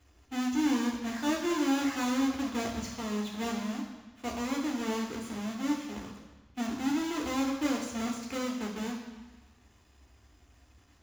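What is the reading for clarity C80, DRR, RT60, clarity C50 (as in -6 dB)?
7.0 dB, -1.0 dB, 1.2 s, 5.0 dB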